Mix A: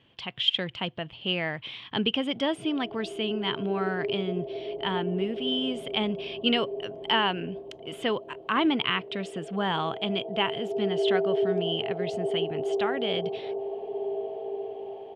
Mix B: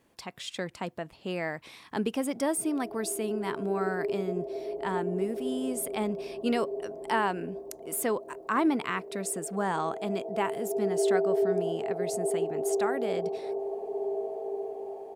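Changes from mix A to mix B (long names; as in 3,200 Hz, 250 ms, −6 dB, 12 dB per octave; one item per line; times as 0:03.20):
speech: remove low-pass with resonance 3,100 Hz, resonance Q 9.9
master: add parametric band 120 Hz −11.5 dB 0.78 octaves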